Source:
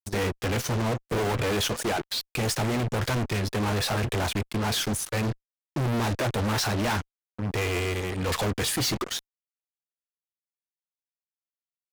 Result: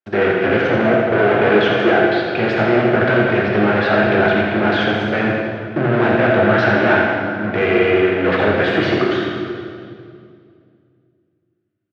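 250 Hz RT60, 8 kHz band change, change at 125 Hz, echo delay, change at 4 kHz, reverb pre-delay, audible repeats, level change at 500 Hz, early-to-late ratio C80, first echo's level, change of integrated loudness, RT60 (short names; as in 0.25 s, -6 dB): 2.8 s, under -15 dB, +4.5 dB, 86 ms, +3.0 dB, 11 ms, 1, +16.0 dB, 0.5 dB, -7.0 dB, +12.0 dB, 2.3 s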